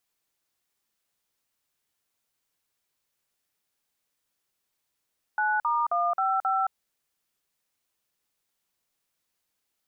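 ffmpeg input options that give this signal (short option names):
-f lavfi -i "aevalsrc='0.0562*clip(min(mod(t,0.267),0.22-mod(t,0.267))/0.002,0,1)*(eq(floor(t/0.267),0)*(sin(2*PI*852*mod(t,0.267))+sin(2*PI*1477*mod(t,0.267)))+eq(floor(t/0.267),1)*(sin(2*PI*941*mod(t,0.267))+sin(2*PI*1209*mod(t,0.267)))+eq(floor(t/0.267),2)*(sin(2*PI*697*mod(t,0.267))+sin(2*PI*1209*mod(t,0.267)))+eq(floor(t/0.267),3)*(sin(2*PI*770*mod(t,0.267))+sin(2*PI*1336*mod(t,0.267)))+eq(floor(t/0.267),4)*(sin(2*PI*770*mod(t,0.267))+sin(2*PI*1336*mod(t,0.267))))':d=1.335:s=44100"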